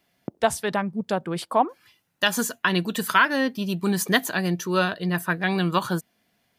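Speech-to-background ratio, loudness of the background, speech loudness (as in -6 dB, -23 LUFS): 17.0 dB, -41.0 LUFS, -24.0 LUFS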